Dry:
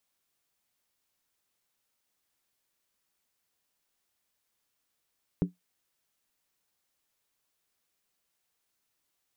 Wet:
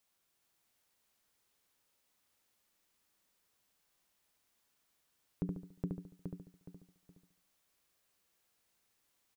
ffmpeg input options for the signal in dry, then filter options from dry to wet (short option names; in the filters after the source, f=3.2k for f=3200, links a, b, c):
-f lavfi -i "aevalsrc='0.112*pow(10,-3*t/0.15)*sin(2*PI*179*t)+0.0562*pow(10,-3*t/0.119)*sin(2*PI*285.3*t)+0.0282*pow(10,-3*t/0.103)*sin(2*PI*382.3*t)+0.0141*pow(10,-3*t/0.099)*sin(2*PI*411*t)+0.00708*pow(10,-3*t/0.092)*sin(2*PI*474.9*t)':d=0.63:s=44100"
-filter_complex "[0:a]asplit=2[a][b];[b]aecho=0:1:418|836|1254|1672:0.631|0.208|0.0687|0.0227[c];[a][c]amix=inputs=2:normalize=0,alimiter=limit=-23.5dB:level=0:latency=1:release=73,asplit=2[d][e];[e]adelay=71,lowpass=f=2k:p=1,volume=-3dB,asplit=2[f][g];[g]adelay=71,lowpass=f=2k:p=1,volume=0.45,asplit=2[h][i];[i]adelay=71,lowpass=f=2k:p=1,volume=0.45,asplit=2[j][k];[k]adelay=71,lowpass=f=2k:p=1,volume=0.45,asplit=2[l][m];[m]adelay=71,lowpass=f=2k:p=1,volume=0.45,asplit=2[n][o];[o]adelay=71,lowpass=f=2k:p=1,volume=0.45[p];[f][h][j][l][n][p]amix=inputs=6:normalize=0[q];[d][q]amix=inputs=2:normalize=0"